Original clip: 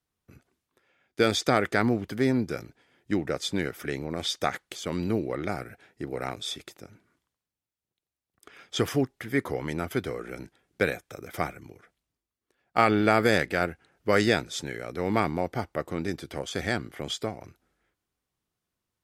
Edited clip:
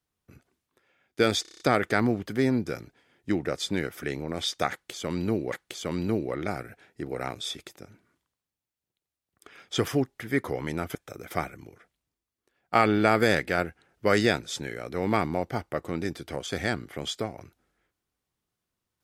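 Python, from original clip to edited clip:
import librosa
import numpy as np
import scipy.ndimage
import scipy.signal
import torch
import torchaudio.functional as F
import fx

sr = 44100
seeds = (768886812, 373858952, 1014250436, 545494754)

y = fx.edit(x, sr, fx.stutter(start_s=1.42, slice_s=0.03, count=7),
    fx.repeat(start_s=4.53, length_s=0.81, count=2),
    fx.cut(start_s=9.96, length_s=1.02), tone=tone)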